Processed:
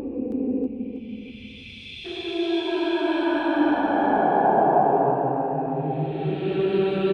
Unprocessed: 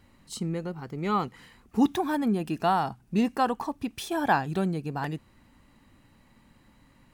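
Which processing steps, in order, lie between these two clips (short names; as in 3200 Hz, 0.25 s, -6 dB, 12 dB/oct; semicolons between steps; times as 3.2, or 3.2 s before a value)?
notch 1800 Hz, Q 23; LFO low-pass sine 2 Hz 530–4000 Hz; fifteen-band EQ 400 Hz +12 dB, 2500 Hz +7 dB, 6300 Hz -6 dB; in parallel at +1 dB: limiter -17 dBFS, peak gain reduction 11.5 dB; on the sum: Paulstretch 8.9×, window 0.25 s, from 3.8; spectral gain 0.67–2.05, 250–2000 Hz -20 dB; on a send: feedback echo 0.321 s, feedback 42%, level -9.5 dB; on the sum: gain -5.5 dB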